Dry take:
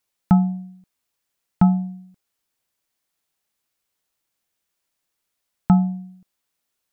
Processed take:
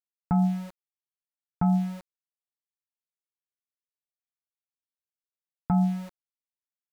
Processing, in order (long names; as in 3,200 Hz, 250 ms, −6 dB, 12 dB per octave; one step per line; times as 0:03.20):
stylus tracing distortion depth 0.034 ms
low-pass that shuts in the quiet parts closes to 1,200 Hz, open at −16.5 dBFS
notch comb filter 200 Hz
centre clipping without the shift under −42.5 dBFS
brickwall limiter −19.5 dBFS, peak gain reduction 11.5 dB
level +3.5 dB